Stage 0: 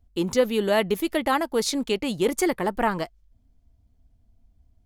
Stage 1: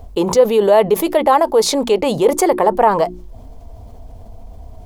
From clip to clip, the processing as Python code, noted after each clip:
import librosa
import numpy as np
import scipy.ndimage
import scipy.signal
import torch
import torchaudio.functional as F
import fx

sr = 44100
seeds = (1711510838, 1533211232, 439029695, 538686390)

y = fx.band_shelf(x, sr, hz=670.0, db=12.0, octaves=1.7)
y = fx.hum_notches(y, sr, base_hz=60, count=6)
y = fx.env_flatten(y, sr, amount_pct=50)
y = y * 10.0 ** (-3.0 / 20.0)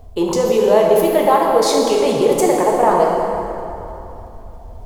y = fx.rev_plate(x, sr, seeds[0], rt60_s=3.1, hf_ratio=0.65, predelay_ms=0, drr_db=-2.0)
y = y * 10.0 ** (-4.5 / 20.0)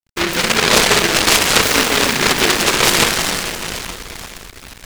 y = fx.reverse_delay_fb(x, sr, ms=237, feedback_pct=78, wet_db=-11.5)
y = np.sign(y) * np.maximum(np.abs(y) - 10.0 ** (-31.0 / 20.0), 0.0)
y = fx.noise_mod_delay(y, sr, seeds[1], noise_hz=1800.0, depth_ms=0.49)